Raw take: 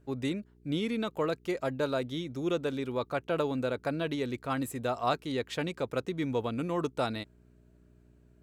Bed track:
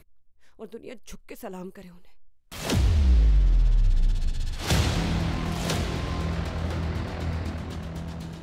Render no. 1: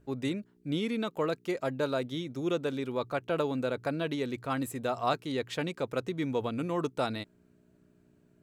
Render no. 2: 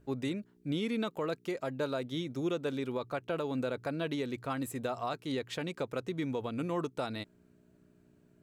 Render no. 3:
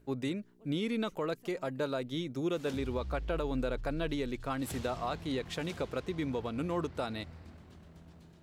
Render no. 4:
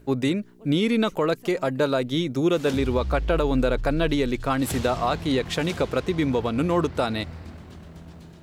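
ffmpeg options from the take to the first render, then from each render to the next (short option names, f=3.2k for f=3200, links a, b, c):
-af "bandreject=f=60:t=h:w=4,bandreject=f=120:t=h:w=4"
-af "alimiter=level_in=0.5dB:limit=-24dB:level=0:latency=1:release=222,volume=-0.5dB"
-filter_complex "[1:a]volume=-20.5dB[a];[0:a][a]amix=inputs=2:normalize=0"
-af "volume=11.5dB"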